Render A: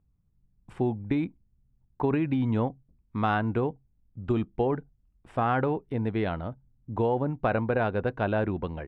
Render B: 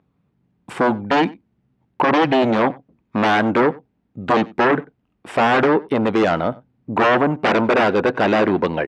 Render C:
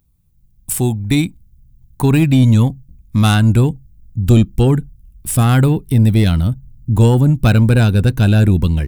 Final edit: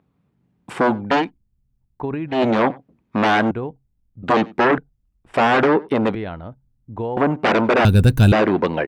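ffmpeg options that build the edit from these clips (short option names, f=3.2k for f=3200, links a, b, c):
-filter_complex "[0:a]asplit=4[a][b][c][d];[1:a]asplit=6[e][f][g][h][i][j];[e]atrim=end=1.31[k];[a]atrim=start=1.15:end=2.43[l];[f]atrim=start=2.27:end=3.512[m];[b]atrim=start=3.508:end=4.232[n];[g]atrim=start=4.228:end=4.782[o];[c]atrim=start=4.778:end=5.342[p];[h]atrim=start=5.338:end=6.152[q];[d]atrim=start=6.148:end=7.172[r];[i]atrim=start=7.168:end=7.852[s];[2:a]atrim=start=7.848:end=8.322[t];[j]atrim=start=8.318[u];[k][l]acrossfade=d=0.16:c1=tri:c2=tri[v];[v][m]acrossfade=d=0.16:c1=tri:c2=tri[w];[w][n]acrossfade=d=0.004:c1=hsin:c2=hsin[x];[x][o]acrossfade=d=0.004:c1=hsin:c2=hsin[y];[y][p]acrossfade=d=0.004:c1=hsin:c2=hsin[z];[z][q]acrossfade=d=0.004:c1=hsin:c2=hsin[aa];[aa][r]acrossfade=d=0.004:c1=hsin:c2=hsin[ab];[ab][s]acrossfade=d=0.004:c1=hsin:c2=hsin[ac];[ac][t]acrossfade=d=0.004:c1=hsin:c2=hsin[ad];[ad][u]acrossfade=d=0.004:c1=hsin:c2=hsin"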